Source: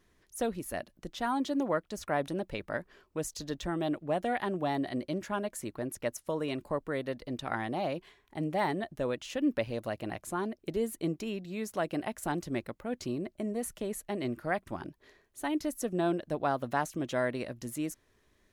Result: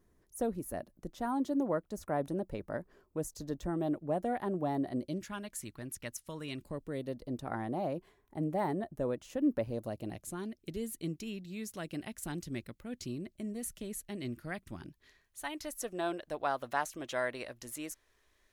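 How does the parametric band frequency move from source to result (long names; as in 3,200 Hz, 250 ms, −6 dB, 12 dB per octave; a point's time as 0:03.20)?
parametric band −13.5 dB 2.4 octaves
0:04.91 3,000 Hz
0:05.33 560 Hz
0:06.43 560 Hz
0:07.45 3,100 Hz
0:09.64 3,100 Hz
0:10.46 770 Hz
0:14.79 770 Hz
0:15.85 170 Hz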